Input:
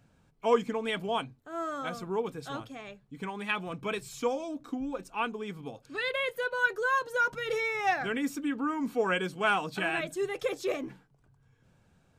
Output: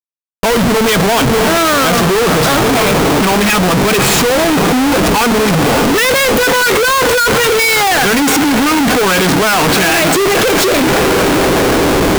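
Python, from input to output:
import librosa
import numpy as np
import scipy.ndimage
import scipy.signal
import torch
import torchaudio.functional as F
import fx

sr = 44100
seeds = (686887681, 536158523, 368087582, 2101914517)

y = fx.leveller(x, sr, passes=5)
y = fx.echo_diffused(y, sr, ms=543, feedback_pct=70, wet_db=-15)
y = fx.schmitt(y, sr, flips_db=-34.5)
y = F.gain(torch.from_numpy(y), 8.0).numpy()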